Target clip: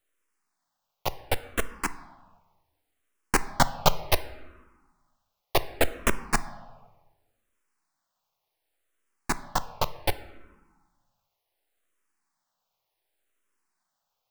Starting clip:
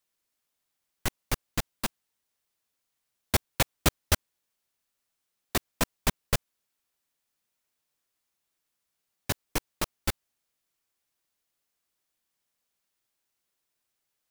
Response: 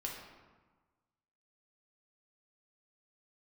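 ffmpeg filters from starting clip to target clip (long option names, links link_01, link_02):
-filter_complex "[0:a]equalizer=frequency=840:width_type=o:width=2.1:gain=12,aeval=exprs='max(val(0),0)':channel_layout=same,asplit=2[link_01][link_02];[1:a]atrim=start_sample=2205[link_03];[link_02][link_03]afir=irnorm=-1:irlink=0,volume=-8.5dB[link_04];[link_01][link_04]amix=inputs=2:normalize=0,asplit=2[link_05][link_06];[link_06]afreqshift=-0.68[link_07];[link_05][link_07]amix=inputs=2:normalize=1,volume=3dB"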